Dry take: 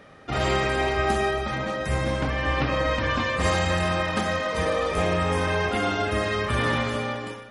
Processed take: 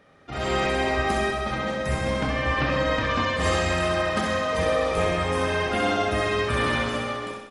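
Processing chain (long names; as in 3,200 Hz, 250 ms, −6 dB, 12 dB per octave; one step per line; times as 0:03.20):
automatic gain control gain up to 8 dB
repeating echo 65 ms, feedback 59%, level −5.5 dB
level −8 dB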